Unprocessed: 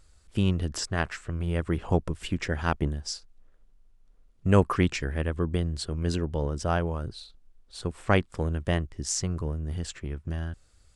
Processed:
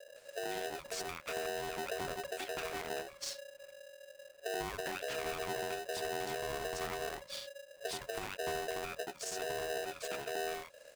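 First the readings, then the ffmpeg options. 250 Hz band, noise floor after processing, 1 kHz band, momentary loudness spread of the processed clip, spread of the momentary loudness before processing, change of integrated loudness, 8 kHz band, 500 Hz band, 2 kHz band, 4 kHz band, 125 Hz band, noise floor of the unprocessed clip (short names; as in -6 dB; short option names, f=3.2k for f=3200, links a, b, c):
-20.0 dB, -58 dBFS, -5.5 dB, 7 LU, 11 LU, -10.5 dB, -7.0 dB, -6.5 dB, -5.5 dB, -4.5 dB, -27.0 dB, -60 dBFS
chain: -filter_complex "[0:a]equalizer=f=160:t=o:w=0.33:g=10,equalizer=f=315:t=o:w=0.33:g=-7,equalizer=f=2k:t=o:w=0.33:g=12,acompressor=threshold=-36dB:ratio=4,acrossover=split=150|510[a][b][c];[b]adelay=80[d];[c]adelay=160[e];[a][d][e]amix=inputs=3:normalize=0,alimiter=level_in=8.5dB:limit=-24dB:level=0:latency=1:release=52,volume=-8.5dB,aeval=exprs='val(0)*sgn(sin(2*PI*560*n/s))':c=same,volume=2dB"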